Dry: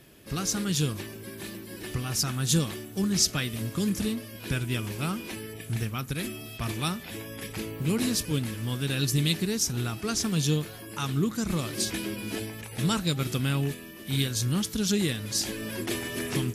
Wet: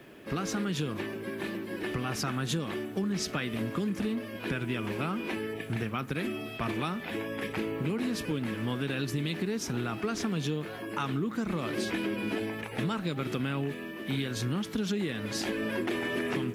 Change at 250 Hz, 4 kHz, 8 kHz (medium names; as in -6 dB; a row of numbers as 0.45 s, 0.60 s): -1.5 dB, -7.5 dB, -12.5 dB